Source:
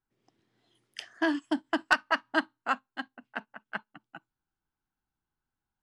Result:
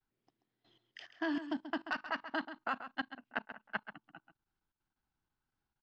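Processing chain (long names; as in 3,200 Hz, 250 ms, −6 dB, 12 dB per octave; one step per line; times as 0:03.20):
low-pass filter 5,400 Hz 24 dB per octave
output level in coarse steps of 18 dB
slap from a distant wall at 23 metres, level −11 dB
level +2.5 dB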